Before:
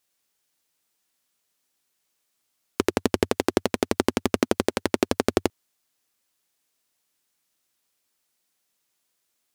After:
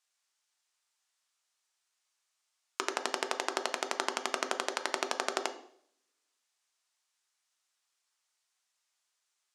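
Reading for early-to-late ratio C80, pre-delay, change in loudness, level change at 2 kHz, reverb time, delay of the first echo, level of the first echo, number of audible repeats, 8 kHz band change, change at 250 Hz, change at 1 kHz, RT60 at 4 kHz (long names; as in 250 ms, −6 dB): 15.5 dB, 3 ms, −9.0 dB, −3.0 dB, 0.60 s, no echo audible, no echo audible, no echo audible, −3.5 dB, −20.5 dB, −3.5 dB, 0.65 s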